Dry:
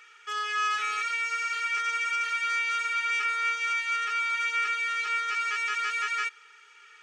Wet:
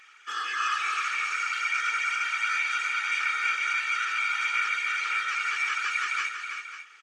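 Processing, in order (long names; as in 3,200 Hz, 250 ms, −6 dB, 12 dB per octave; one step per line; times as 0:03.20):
Bessel high-pass filter 740 Hz, order 2
random phases in short frames
multi-tap delay 323/538/561 ms −7/−12.5/−19.5 dB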